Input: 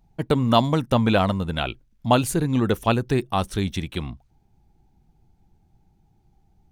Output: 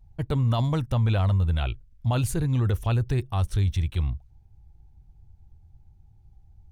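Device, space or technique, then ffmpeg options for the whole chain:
car stereo with a boomy subwoofer: -af "lowshelf=frequency=140:width_type=q:width=1.5:gain=13.5,alimiter=limit=-11.5dB:level=0:latency=1:release=11,volume=-5.5dB"

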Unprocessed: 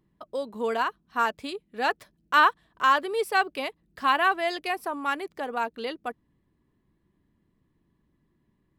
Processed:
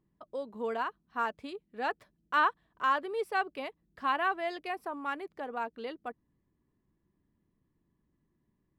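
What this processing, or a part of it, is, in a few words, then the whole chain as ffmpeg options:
through cloth: -af "highshelf=frequency=3500:gain=-11,volume=-6dB"

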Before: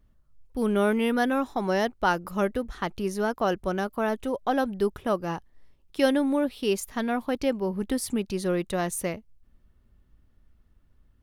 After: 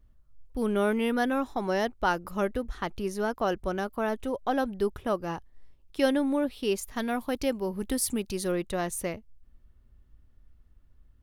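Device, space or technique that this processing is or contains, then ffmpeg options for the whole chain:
low shelf boost with a cut just above: -filter_complex "[0:a]lowshelf=frequency=110:gain=6.5,equalizer=frequency=180:width_type=o:width=0.56:gain=-3.5,asettb=1/sr,asplit=3[link_01][link_02][link_03];[link_01]atrim=end=6.964[link_04];[link_02]atrim=start=6.96:end=8.52,asetpts=PTS-STARTPTS,afade=type=in:duration=0.004:curve=qsin,afade=type=out:start_time=1.556:duration=0.004:curve=qsin,aemphasis=mode=production:type=cd[link_05];[link_03]atrim=start=8.516[link_06];[link_04][link_05]acrossfade=duration=0.004:curve1=hsin:curve2=qsin[link_07];[link_07][link_06]acrossfade=duration=0.004:curve1=qsin:curve2=hsin,volume=-2.5dB"

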